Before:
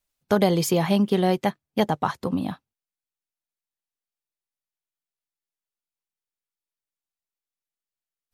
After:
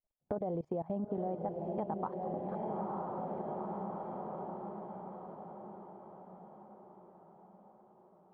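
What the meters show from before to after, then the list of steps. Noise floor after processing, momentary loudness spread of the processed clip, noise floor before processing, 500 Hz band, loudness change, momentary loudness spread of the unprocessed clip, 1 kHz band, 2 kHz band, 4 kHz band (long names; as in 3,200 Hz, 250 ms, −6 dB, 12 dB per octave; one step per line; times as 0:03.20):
−64 dBFS, 18 LU, below −85 dBFS, −11.0 dB, −16.5 dB, 8 LU, −9.0 dB, −25.5 dB, below −40 dB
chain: low-pass filter sweep 680 Hz → 2,600 Hz, 0:01.26–0:04.01
output level in coarse steps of 21 dB
feedback delay with all-pass diffusion 912 ms, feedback 52%, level −5.5 dB
downward compressor 4 to 1, threshold −34 dBFS, peak gain reduction 14 dB
level −1.5 dB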